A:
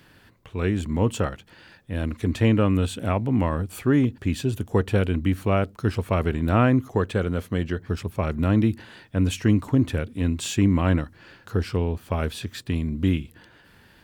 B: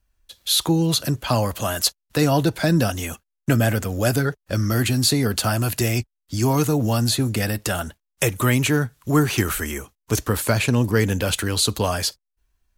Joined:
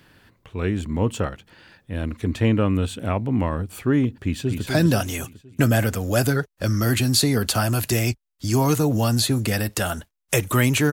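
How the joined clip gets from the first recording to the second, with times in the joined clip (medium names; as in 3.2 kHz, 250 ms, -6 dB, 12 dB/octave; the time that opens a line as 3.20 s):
A
4.21–4.66 s: echo throw 250 ms, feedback 50%, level -5 dB
4.66 s: go over to B from 2.55 s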